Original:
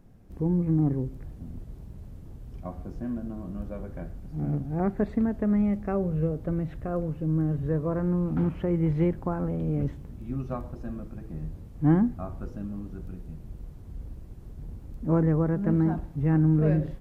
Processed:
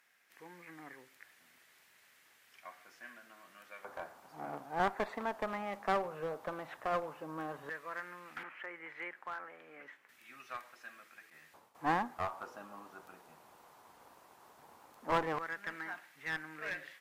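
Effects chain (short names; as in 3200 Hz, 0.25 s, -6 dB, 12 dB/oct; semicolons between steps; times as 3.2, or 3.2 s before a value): 8.43–10.09 three-band isolator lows -13 dB, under 200 Hz, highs -14 dB, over 2100 Hz; 11.3–11.75 expander -36 dBFS; LFO high-pass square 0.13 Hz 940–1900 Hz; one-sided clip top -39 dBFS; gain +3 dB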